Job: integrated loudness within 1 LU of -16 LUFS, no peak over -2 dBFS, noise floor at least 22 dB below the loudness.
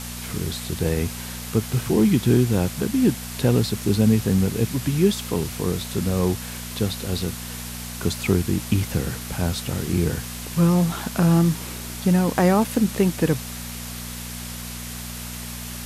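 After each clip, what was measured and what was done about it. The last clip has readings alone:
hum 60 Hz; harmonics up to 240 Hz; hum level -32 dBFS; noise floor -34 dBFS; noise floor target -45 dBFS; loudness -23.0 LUFS; peak -5.0 dBFS; loudness target -16.0 LUFS
-> de-hum 60 Hz, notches 4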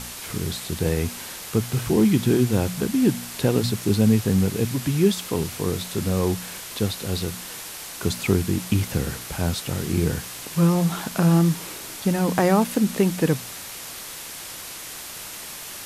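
hum none; noise floor -37 dBFS; noise floor target -46 dBFS
-> noise print and reduce 9 dB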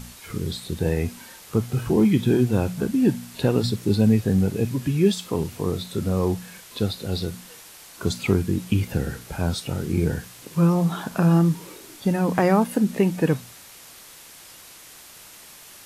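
noise floor -46 dBFS; loudness -23.5 LUFS; peak -6.0 dBFS; loudness target -16.0 LUFS
-> gain +7.5 dB; limiter -2 dBFS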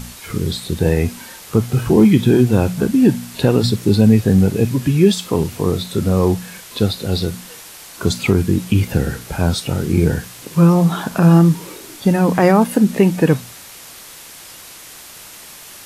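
loudness -16.0 LUFS; peak -2.0 dBFS; noise floor -38 dBFS

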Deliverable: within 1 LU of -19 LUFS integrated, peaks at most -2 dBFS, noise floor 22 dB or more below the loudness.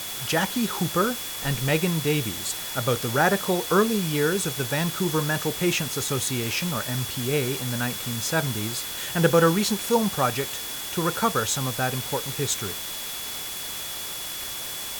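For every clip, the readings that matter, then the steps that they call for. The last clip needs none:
steady tone 3400 Hz; tone level -38 dBFS; noise floor -33 dBFS; noise floor target -47 dBFS; loudness -25.0 LUFS; peak -6.0 dBFS; loudness target -19.0 LUFS
-> notch 3400 Hz, Q 30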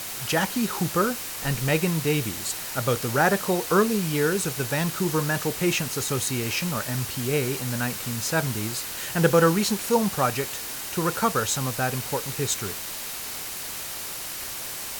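steady tone none; noise floor -34 dBFS; noise floor target -47 dBFS
-> denoiser 13 dB, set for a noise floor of -34 dBFS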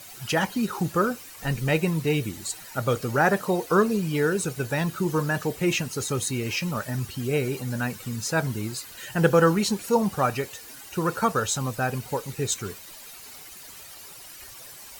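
noise floor -44 dBFS; noise floor target -48 dBFS
-> denoiser 6 dB, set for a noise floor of -44 dBFS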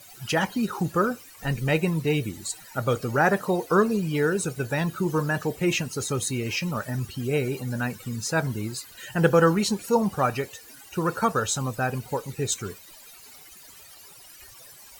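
noise floor -48 dBFS; loudness -26.0 LUFS; peak -6.0 dBFS; loudness target -19.0 LUFS
-> gain +7 dB; limiter -2 dBFS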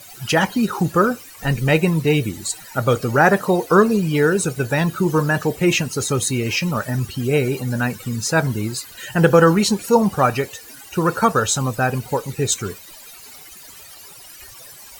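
loudness -19.0 LUFS; peak -2.0 dBFS; noise floor -41 dBFS

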